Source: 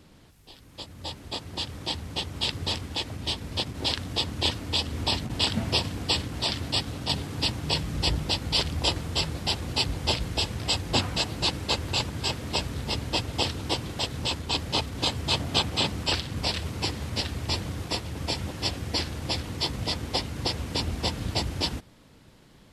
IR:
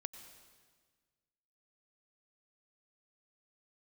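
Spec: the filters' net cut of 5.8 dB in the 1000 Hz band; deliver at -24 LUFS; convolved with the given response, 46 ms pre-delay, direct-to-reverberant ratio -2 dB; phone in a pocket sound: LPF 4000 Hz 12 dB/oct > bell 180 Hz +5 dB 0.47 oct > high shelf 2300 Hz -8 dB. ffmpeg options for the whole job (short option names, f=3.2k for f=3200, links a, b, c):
-filter_complex "[0:a]equalizer=f=1k:t=o:g=-6,asplit=2[a][b];[1:a]atrim=start_sample=2205,adelay=46[c];[b][c]afir=irnorm=-1:irlink=0,volume=5dB[d];[a][d]amix=inputs=2:normalize=0,lowpass=4k,equalizer=f=180:t=o:w=0.47:g=5,highshelf=f=2.3k:g=-8,volume=4dB"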